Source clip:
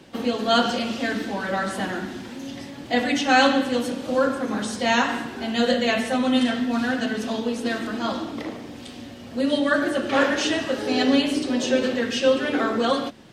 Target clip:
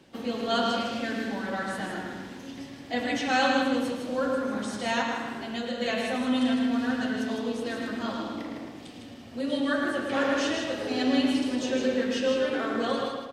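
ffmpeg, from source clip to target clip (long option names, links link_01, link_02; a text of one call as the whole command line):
ffmpeg -i in.wav -filter_complex "[0:a]asplit=2[link_01][link_02];[link_02]aecho=0:1:158:0.531[link_03];[link_01][link_03]amix=inputs=2:normalize=0,asettb=1/sr,asplit=3[link_04][link_05][link_06];[link_04]atrim=end=5.014[link_07];[link_05]atrim=start=5.01:end=5.81,asetpts=PTS-STARTPTS,afade=type=in:duration=0.004:curve=qsin,afade=type=out:start_time=0.796:duration=0.004:curve=qsin,acompressor=threshold=-22dB:ratio=6[link_08];[link_06]atrim=start=5.806[link_09];[link_07][link_08]acrossfade=duration=0.004:curve1=hsin:curve2=qsin[link_10];[link_10][link_09]acrossfade=duration=0.004:curve1=qsin:curve2=hsin,asplit=2[link_11][link_12];[link_12]adelay=110,lowpass=frequency=3300:poles=1,volume=-5dB,asplit=2[link_13][link_14];[link_14]adelay=110,lowpass=frequency=3300:poles=1,volume=0.49,asplit=2[link_15][link_16];[link_16]adelay=110,lowpass=frequency=3300:poles=1,volume=0.49,asplit=2[link_17][link_18];[link_18]adelay=110,lowpass=frequency=3300:poles=1,volume=0.49,asplit=2[link_19][link_20];[link_20]adelay=110,lowpass=frequency=3300:poles=1,volume=0.49,asplit=2[link_21][link_22];[link_22]adelay=110,lowpass=frequency=3300:poles=1,volume=0.49[link_23];[link_13][link_15][link_17][link_19][link_21][link_23]amix=inputs=6:normalize=0[link_24];[link_11][link_24]amix=inputs=2:normalize=0,volume=-8dB" out.wav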